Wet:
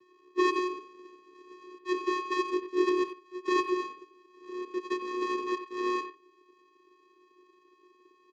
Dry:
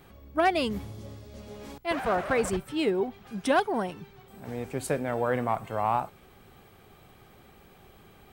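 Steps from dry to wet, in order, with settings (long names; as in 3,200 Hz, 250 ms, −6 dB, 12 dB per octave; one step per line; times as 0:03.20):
samples sorted by size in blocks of 64 samples
harmonic generator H 7 −27 dB, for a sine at −13 dBFS
channel vocoder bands 8, square 363 Hz
far-end echo of a speakerphone 90 ms, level −9 dB
Speex 36 kbit/s 32,000 Hz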